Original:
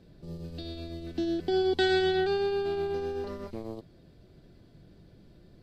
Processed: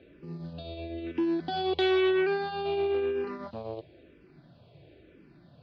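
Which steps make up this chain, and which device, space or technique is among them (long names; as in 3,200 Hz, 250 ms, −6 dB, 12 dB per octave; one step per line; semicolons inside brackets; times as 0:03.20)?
0:00.53–0:00.98: high-shelf EQ 2,700 Hz −9.5 dB
barber-pole phaser into a guitar amplifier (frequency shifter mixed with the dry sound −1 Hz; soft clipping −26.5 dBFS, distortion −13 dB; loudspeaker in its box 100–3,900 Hz, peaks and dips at 100 Hz −4 dB, 200 Hz −8 dB, 600 Hz +3 dB, 2,500 Hz +8 dB)
level +6 dB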